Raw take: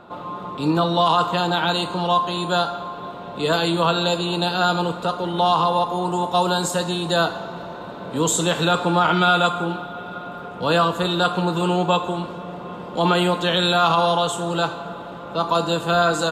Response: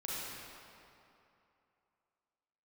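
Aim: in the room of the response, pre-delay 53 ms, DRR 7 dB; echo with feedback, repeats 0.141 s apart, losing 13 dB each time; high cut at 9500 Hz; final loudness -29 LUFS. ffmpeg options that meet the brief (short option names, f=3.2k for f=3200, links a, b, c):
-filter_complex "[0:a]lowpass=9.5k,aecho=1:1:141|282|423:0.224|0.0493|0.0108,asplit=2[a][b];[1:a]atrim=start_sample=2205,adelay=53[c];[b][c]afir=irnorm=-1:irlink=0,volume=-10dB[d];[a][d]amix=inputs=2:normalize=0,volume=-9dB"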